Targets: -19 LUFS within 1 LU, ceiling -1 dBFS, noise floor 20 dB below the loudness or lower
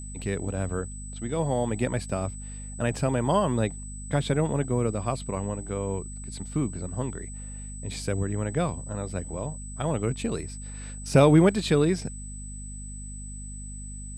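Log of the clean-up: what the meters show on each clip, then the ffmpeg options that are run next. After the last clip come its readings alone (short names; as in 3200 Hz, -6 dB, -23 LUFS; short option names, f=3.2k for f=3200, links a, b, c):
hum 50 Hz; harmonics up to 250 Hz; hum level -36 dBFS; steady tone 8000 Hz; tone level -42 dBFS; loudness -27.5 LUFS; peak -6.0 dBFS; loudness target -19.0 LUFS
-> -af "bandreject=f=50:t=h:w=4,bandreject=f=100:t=h:w=4,bandreject=f=150:t=h:w=4,bandreject=f=200:t=h:w=4,bandreject=f=250:t=h:w=4"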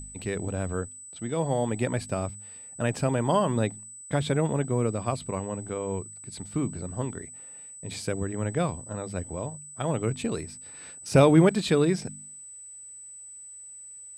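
hum none; steady tone 8000 Hz; tone level -42 dBFS
-> -af "bandreject=f=8k:w=30"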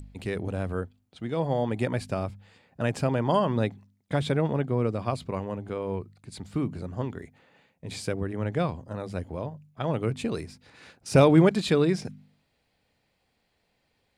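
steady tone none; loudness -27.5 LUFS; peak -6.5 dBFS; loudness target -19.0 LUFS
-> -af "volume=8.5dB,alimiter=limit=-1dB:level=0:latency=1"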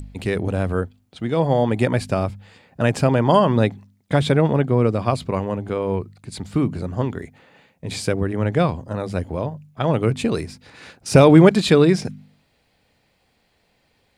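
loudness -19.5 LUFS; peak -1.0 dBFS; noise floor -65 dBFS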